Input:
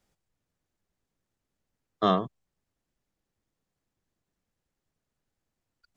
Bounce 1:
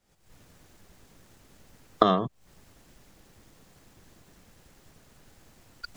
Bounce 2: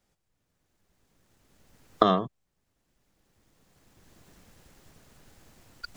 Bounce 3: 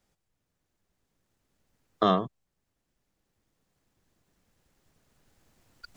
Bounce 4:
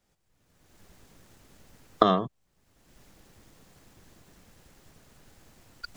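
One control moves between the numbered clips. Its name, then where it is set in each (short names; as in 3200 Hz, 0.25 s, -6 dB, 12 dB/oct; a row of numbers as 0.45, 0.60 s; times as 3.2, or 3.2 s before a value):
recorder AGC, rising by: 83, 13, 5.3, 33 dB/s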